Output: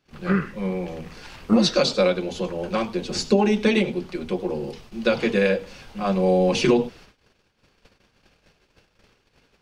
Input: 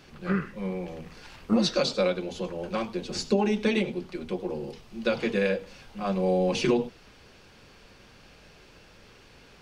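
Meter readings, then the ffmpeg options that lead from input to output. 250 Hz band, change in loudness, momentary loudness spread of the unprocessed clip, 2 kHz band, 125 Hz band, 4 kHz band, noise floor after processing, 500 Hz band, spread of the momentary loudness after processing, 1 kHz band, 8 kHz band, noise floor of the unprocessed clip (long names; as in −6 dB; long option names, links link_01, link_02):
+5.5 dB, +5.5 dB, 13 LU, +5.5 dB, +5.5 dB, +5.5 dB, −67 dBFS, +5.5 dB, 13 LU, +5.5 dB, +5.5 dB, −54 dBFS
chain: -af "agate=range=-24dB:threshold=-50dB:ratio=16:detection=peak,volume=5.5dB"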